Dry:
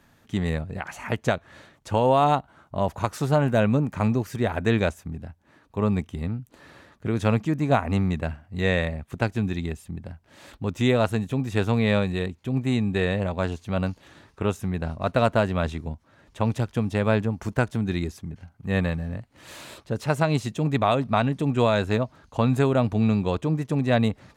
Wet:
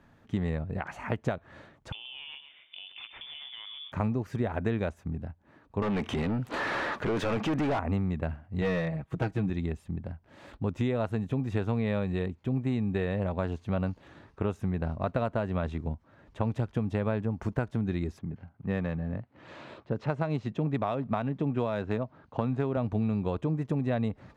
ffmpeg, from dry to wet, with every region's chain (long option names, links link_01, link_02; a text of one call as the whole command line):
ffmpeg -i in.wav -filter_complex "[0:a]asettb=1/sr,asplit=3[link_01][link_02][link_03];[link_01]atrim=end=1.924[link_04];[link_02]atrim=start=1.92:end=3.92,asetpts=PTS-STARTPTS,afade=type=in:duration=0.004:curve=qsin,afade=type=out:start_time=1.996:duration=0.004:curve=qsin,lowpass=frequency=3100:width_type=q:width=0.5098,lowpass=frequency=3100:width_type=q:width=0.6013,lowpass=frequency=3100:width_type=q:width=0.9,lowpass=frequency=3100:width_type=q:width=2.563,afreqshift=-3600,acompressor=threshold=-33dB:ratio=12:attack=3.2:release=140:knee=1:detection=peak,asplit=6[link_05][link_06][link_07][link_08][link_09][link_10];[link_06]adelay=129,afreqshift=59,volume=-9dB[link_11];[link_07]adelay=258,afreqshift=118,volume=-16.3dB[link_12];[link_08]adelay=387,afreqshift=177,volume=-23.7dB[link_13];[link_09]adelay=516,afreqshift=236,volume=-31dB[link_14];[link_10]adelay=645,afreqshift=295,volume=-38.3dB[link_15];[link_05][link_11][link_12][link_13][link_14][link_15]amix=inputs=6:normalize=0,atrim=end_sample=88200[link_16];[link_03]atrim=start=3.916[link_17];[link_04][link_16]acrossfade=duration=0.004:curve1=hsin:curve2=qsin[link_18];[link_18][link_17]acrossfade=duration=0.004:curve1=qsin:curve2=hsin,asettb=1/sr,asplit=3[link_19][link_20][link_21];[link_19]atrim=end=5.824[link_22];[link_20]atrim=start=5.82:end=7.79,asetpts=PTS-STARTPTS,afade=type=in:duration=0.004:curve=qsin,afade=type=out:start_time=1.966:duration=0.004:curve=qsin,lowshelf=frequency=340:gain=-3.5,acompressor=threshold=-46dB:ratio=2:attack=3.2:release=140:knee=1:detection=peak,asplit=2[link_23][link_24];[link_24]highpass=frequency=720:poles=1,volume=38dB,asoftclip=type=tanh:threshold=-17.5dB[link_25];[link_23][link_25]amix=inputs=2:normalize=0,lowpass=frequency=4700:poles=1,volume=-6dB[link_26];[link_21]atrim=start=7.786[link_27];[link_22][link_26]acrossfade=duration=0.004:curve1=hsin:curve2=qsin[link_28];[link_28][link_27]acrossfade=duration=0.004:curve1=qsin:curve2=hsin,asettb=1/sr,asplit=3[link_29][link_30][link_31];[link_29]atrim=end=8.614[link_32];[link_30]atrim=start=8.61:end=9.5,asetpts=PTS-STARTPTS,afade=type=in:duration=0.004:curve=qsin,afade=type=out:start_time=0.886:duration=0.004:curve=qsin,agate=range=-33dB:threshold=-49dB:ratio=3:release=100:detection=peak,aecho=1:1:6.3:0.81,atrim=end_sample=39249,asoftclip=type=hard:threshold=-17.5dB[link_33];[link_31]atrim=start=9.496[link_34];[link_32][link_33]acrossfade=duration=0.004:curve1=hsin:curve2=qsin[link_35];[link_35][link_34]acrossfade=duration=0.004:curve1=qsin:curve2=hsin,asettb=1/sr,asplit=3[link_36][link_37][link_38];[link_36]atrim=end=18.194[link_39];[link_37]atrim=start=18.19:end=22.77,asetpts=PTS-STARTPTS,afade=type=in:duration=0.004:curve=qsin,afade=type=out:start_time=4.576:duration=0.004:curve=qsin,highpass=100,lowpass=7900,adynamicsmooth=sensitivity=6:basefreq=4400[link_40];[link_38]atrim=start=22.766[link_41];[link_39][link_40]acrossfade=duration=0.004:curve1=hsin:curve2=qsin[link_42];[link_42][link_41]acrossfade=duration=0.004:curve1=qsin:curve2=hsin,acompressor=threshold=-25dB:ratio=6,lowpass=frequency=1500:poles=1" out.wav